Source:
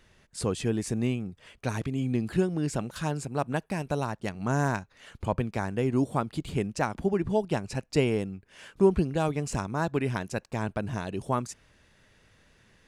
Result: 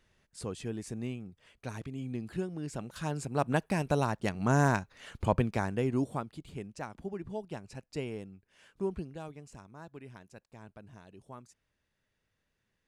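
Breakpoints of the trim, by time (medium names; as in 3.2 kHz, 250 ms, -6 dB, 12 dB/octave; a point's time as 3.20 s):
2.68 s -9.5 dB
3.52 s +1 dB
5.42 s +1 dB
6.12 s -6 dB
6.38 s -12.5 dB
8.94 s -12.5 dB
9.52 s -20 dB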